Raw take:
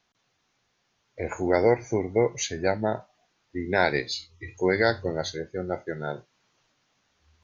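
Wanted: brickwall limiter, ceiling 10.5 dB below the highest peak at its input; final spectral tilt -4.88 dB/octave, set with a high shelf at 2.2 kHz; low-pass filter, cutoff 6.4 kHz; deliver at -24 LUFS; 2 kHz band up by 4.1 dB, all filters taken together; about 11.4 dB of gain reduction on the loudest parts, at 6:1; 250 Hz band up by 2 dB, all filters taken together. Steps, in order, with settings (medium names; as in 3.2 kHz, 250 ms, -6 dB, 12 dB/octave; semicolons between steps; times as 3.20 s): low-pass 6.4 kHz; peaking EQ 250 Hz +3 dB; peaking EQ 2 kHz +8 dB; treble shelf 2.2 kHz -6 dB; compression 6:1, threshold -27 dBFS; trim +14 dB; peak limiter -11 dBFS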